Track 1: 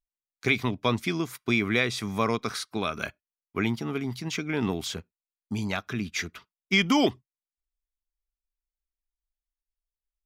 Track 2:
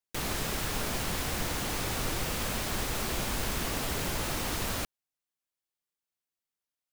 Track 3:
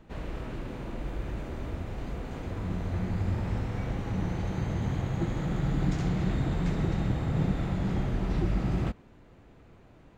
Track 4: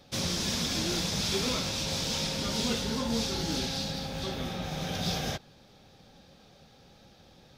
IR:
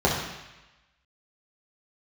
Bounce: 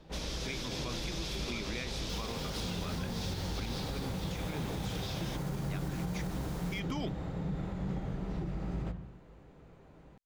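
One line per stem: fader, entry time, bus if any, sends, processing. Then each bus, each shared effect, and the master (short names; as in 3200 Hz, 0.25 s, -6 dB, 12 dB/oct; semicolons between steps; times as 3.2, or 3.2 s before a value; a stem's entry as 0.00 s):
-14.5 dB, 0.00 s, no send, dry
-18.5 dB, 1.95 s, send -13.5 dB, dry
-3.5 dB, 0.00 s, send -23.5 dB, compressor 2.5:1, threshold -34 dBFS, peak gain reduction 8.5 dB
-12.5 dB, 0.00 s, no send, bell 2700 Hz +6 dB 1.6 oct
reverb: on, RT60 1.0 s, pre-delay 3 ms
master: limiter -27 dBFS, peak gain reduction 6.5 dB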